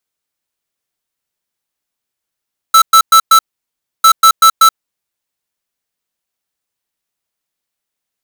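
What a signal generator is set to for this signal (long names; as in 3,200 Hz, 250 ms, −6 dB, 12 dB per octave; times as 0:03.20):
beeps in groups square 1,320 Hz, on 0.08 s, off 0.11 s, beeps 4, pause 0.65 s, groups 2, −5 dBFS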